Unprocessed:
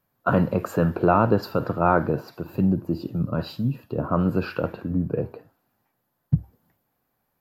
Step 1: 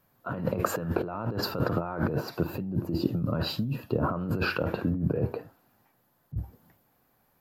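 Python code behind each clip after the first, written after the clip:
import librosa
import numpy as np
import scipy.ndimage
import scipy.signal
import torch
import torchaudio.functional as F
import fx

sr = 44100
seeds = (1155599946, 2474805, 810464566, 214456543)

y = fx.over_compress(x, sr, threshold_db=-29.0, ratio=-1.0)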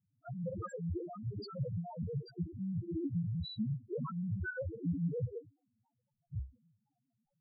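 y = fx.spec_topn(x, sr, count=1)
y = y * 10.0 ** (1.0 / 20.0)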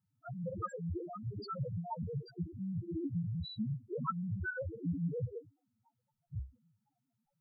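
y = fx.small_body(x, sr, hz=(910.0, 1300.0), ring_ms=35, db=13)
y = y * 10.0 ** (-1.0 / 20.0)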